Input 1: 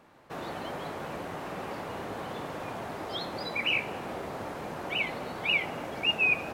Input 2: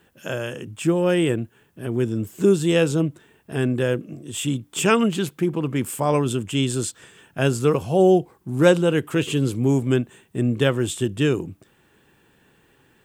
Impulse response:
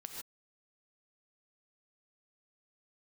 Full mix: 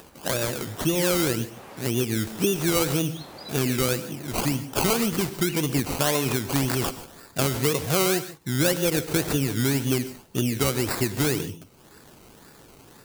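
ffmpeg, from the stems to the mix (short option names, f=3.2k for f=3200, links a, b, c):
-filter_complex "[0:a]volume=-7dB[a];[1:a]acompressor=threshold=-22dB:ratio=6,acrusher=samples=20:mix=1:aa=0.000001:lfo=1:lforange=12:lforate=1.9,volume=-1.5dB,asplit=3[b][c][d];[c]volume=-3dB[e];[d]apad=whole_len=288250[f];[a][f]sidechaincompress=threshold=-37dB:ratio=8:attack=16:release=245[g];[2:a]atrim=start_sample=2205[h];[e][h]afir=irnorm=-1:irlink=0[i];[g][b][i]amix=inputs=3:normalize=0,highshelf=f=4.6k:g=11.5,acompressor=mode=upward:threshold=-41dB:ratio=2.5"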